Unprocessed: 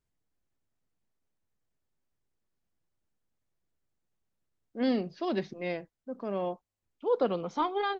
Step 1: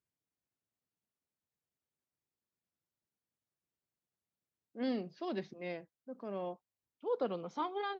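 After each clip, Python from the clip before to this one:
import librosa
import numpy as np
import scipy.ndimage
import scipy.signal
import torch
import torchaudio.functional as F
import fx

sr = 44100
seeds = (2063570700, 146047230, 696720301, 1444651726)

y = scipy.signal.sosfilt(scipy.signal.butter(2, 97.0, 'highpass', fs=sr, output='sos'), x)
y = y * 10.0 ** (-7.5 / 20.0)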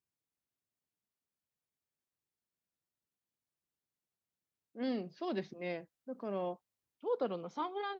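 y = fx.rider(x, sr, range_db=10, speed_s=2.0)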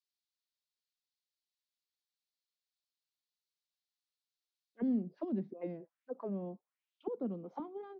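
y = fx.auto_wah(x, sr, base_hz=220.0, top_hz=4200.0, q=2.8, full_db=-35.5, direction='down')
y = y * 10.0 ** (7.0 / 20.0)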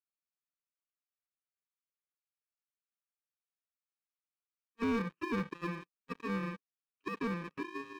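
y = fx.bit_reversed(x, sr, seeds[0], block=64)
y = fx.cabinet(y, sr, low_hz=120.0, low_slope=12, high_hz=2600.0, hz=(120.0, 220.0, 350.0, 540.0, 860.0, 1200.0), db=(-8, -7, -6, -4, -10, 6))
y = fx.leveller(y, sr, passes=3)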